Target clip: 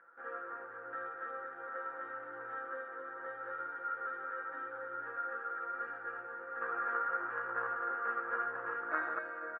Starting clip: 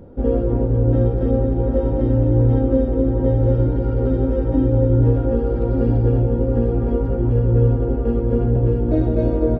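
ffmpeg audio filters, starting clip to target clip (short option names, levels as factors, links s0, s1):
-filter_complex "[0:a]aecho=1:1:5.9:0.53,asettb=1/sr,asplit=3[s0][s1][s2];[s0]atrim=end=6.614[s3];[s1]atrim=start=6.61:end=9.19,asetpts=PTS-STARTPTS,afade=t=in:d=0.004:c=qsin,afade=t=out:st=2.576:d=0.004:c=qsin,acontrast=76[s4];[s2]atrim=start=9.186[s5];[s3][s4]acrossfade=d=0.004:c1=hsin:c2=qsin[s6];[s6][s5]acrossfade=d=0.004:c1=qsin:c2=hsin,asuperpass=centerf=1500:order=4:qfactor=3.2,volume=2.51"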